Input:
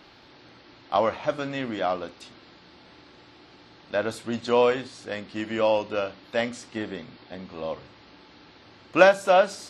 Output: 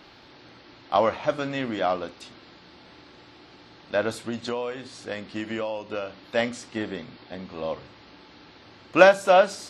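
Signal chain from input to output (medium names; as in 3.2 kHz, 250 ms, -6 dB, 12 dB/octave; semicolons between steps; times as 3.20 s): 4.24–6.24 s: compression 12:1, threshold -28 dBFS, peak gain reduction 13 dB; trim +1.5 dB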